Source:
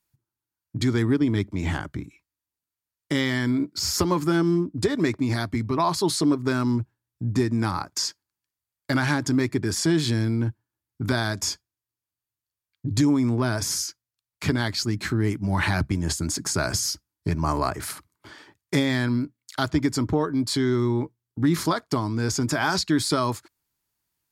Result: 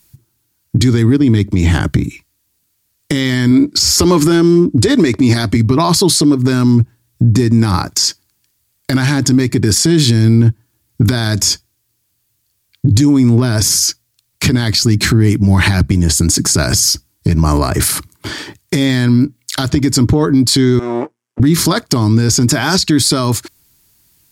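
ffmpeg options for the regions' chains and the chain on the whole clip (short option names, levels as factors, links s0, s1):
-filter_complex "[0:a]asettb=1/sr,asplit=3[s0][s1][s2];[s0]atrim=end=3.514[s3];[s1]atrim=start=3.51:end=5.57,asetpts=PTS-STARTPTS,afade=t=in:d=0.004:c=qsin,afade=t=out:st=2.056:d=0.004:c=qsin,lowpass=12000,equalizer=f=140:w=1.3:g=-6.5,acontrast=70[s4];[s2]atrim=start=5.566[s5];[s3][s4]acrossfade=d=0.004:c1=hsin:c2=qsin[s6];[s6][s5]acrossfade=d=0.004:c1=qsin:c2=hsin,asettb=1/sr,asplit=3[s7][s8][s9];[s7]atrim=end=20.794[s10];[s8]atrim=start=20.79:end=21.4,asetpts=PTS-STARTPTS,afade=t=in:d=0.004:c=qsin,afade=t=out:st=0.606:d=0.004:c=qsin,aeval=exprs='if(lt(val(0),0),0.251*val(0),val(0))':c=same,highpass=570,lowpass=5100,equalizer=f=4000:w=1.4:g=-14.5[s11];[s9]atrim=start=21.396[s12];[s10][s11]acrossfade=d=0.004:c1=hsin:c2=qsin[s13];[s13][s12]acrossfade=d=0.004:c1=qsin:c2=hsin,equalizer=f=990:t=o:w=2.6:g=-9,acompressor=threshold=0.0251:ratio=4,alimiter=level_in=25.1:limit=0.891:release=50:level=0:latency=1,volume=0.794"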